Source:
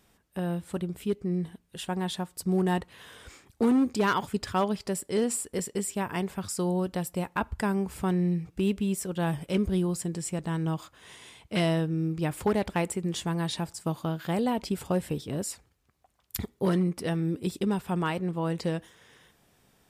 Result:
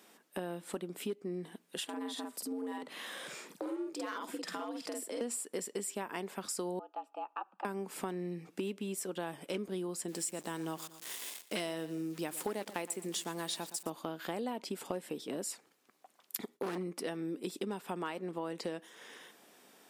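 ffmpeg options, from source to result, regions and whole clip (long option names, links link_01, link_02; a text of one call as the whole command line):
ffmpeg -i in.wav -filter_complex "[0:a]asettb=1/sr,asplit=3[link_01][link_02][link_03];[link_01]atrim=end=1.844[link_04];[link_02]atrim=start=1.84:end=5.21,asetpts=PTS-STARTPTS,afade=type=in:duration=0.004:curve=qsin,afade=type=out:start_time=3.366:duration=0.004:curve=qsin,afreqshift=81,acompressor=threshold=-48dB:ratio=2:attack=3.2:release=140:knee=1:detection=peak,asplit=2[link_05][link_06];[link_06]adelay=49,volume=-2dB[link_07];[link_05][link_07]amix=inputs=2:normalize=0,atrim=end_sample=148617[link_08];[link_03]atrim=start=5.206[link_09];[link_04][link_08]acrossfade=duration=0.004:curve1=hsin:curve2=qsin[link_10];[link_10][link_09]acrossfade=duration=0.004:curve1=qsin:curve2=hsin,asettb=1/sr,asplit=3[link_11][link_12][link_13];[link_11]atrim=end=6.794[link_14];[link_12]atrim=start=6.79:end=7.65,asetpts=PTS-STARTPTS,afade=type=in:duration=0.004:curve=qsin,afade=type=out:start_time=0.856:duration=0.004:curve=qsin,asplit=3[link_15][link_16][link_17];[link_15]bandpass=frequency=730:width_type=q:width=8,volume=0dB[link_18];[link_16]bandpass=frequency=1090:width_type=q:width=8,volume=-6dB[link_19];[link_17]bandpass=frequency=2440:width_type=q:width=8,volume=-9dB[link_20];[link_18][link_19][link_20]amix=inputs=3:normalize=0,equalizer=frequency=12000:width_type=o:width=2.3:gain=-10.5,afreqshift=120[link_21];[link_13]atrim=start=7.646[link_22];[link_14][link_21]acrossfade=duration=0.004:curve1=hsin:curve2=qsin[link_23];[link_23][link_22]acrossfade=duration=0.004:curve1=qsin:curve2=hsin,asettb=1/sr,asplit=3[link_24][link_25][link_26];[link_24]atrim=end=10.084[link_27];[link_25]atrim=start=10.08:end=13.9,asetpts=PTS-STARTPTS,afade=type=in:duration=0.004:curve=qsin,afade=type=out:start_time=3.816:duration=0.004:curve=qsin,aeval=exprs='val(0)*gte(abs(val(0)),0.00473)':channel_layout=same,aemphasis=mode=production:type=cd,aecho=1:1:117|234|351:0.133|0.0427|0.0137,atrim=end_sample=168462[link_28];[link_26]atrim=start=13.896[link_29];[link_27][link_28]acrossfade=duration=0.004:curve1=hsin:curve2=qsin[link_30];[link_30][link_29]acrossfade=duration=0.004:curve1=qsin:curve2=hsin,asettb=1/sr,asplit=3[link_31][link_32][link_33];[link_31]atrim=end=16.384[link_34];[link_32]atrim=start=16.38:end=16.78,asetpts=PTS-STARTPTS,afade=type=in:duration=0.004:curve=qsin,afade=type=out:start_time=0.396:duration=0.004:curve=qsin,agate=range=-33dB:threshold=-60dB:ratio=3:release=100:detection=peak,aeval=exprs='0.0841*(abs(mod(val(0)/0.0841+3,4)-2)-1)':channel_layout=same[link_35];[link_33]atrim=start=16.776[link_36];[link_34][link_35]acrossfade=duration=0.004:curve1=hsin:curve2=qsin[link_37];[link_37][link_36]acrossfade=duration=0.004:curve1=qsin:curve2=hsin,highpass=frequency=240:width=0.5412,highpass=frequency=240:width=1.3066,acompressor=threshold=-42dB:ratio=4,volume=5dB" out.wav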